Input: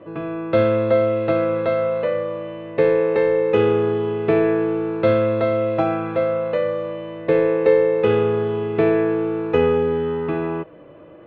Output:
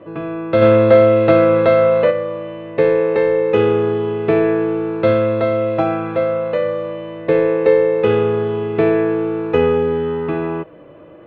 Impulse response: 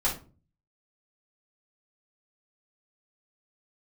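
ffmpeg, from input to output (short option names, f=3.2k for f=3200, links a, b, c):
-filter_complex "[0:a]asplit=3[a][b][c];[a]afade=t=out:st=0.61:d=0.02[d];[b]acontrast=49,afade=t=in:st=0.61:d=0.02,afade=t=out:st=2.1:d=0.02[e];[c]afade=t=in:st=2.1:d=0.02[f];[d][e][f]amix=inputs=3:normalize=0,volume=2.5dB"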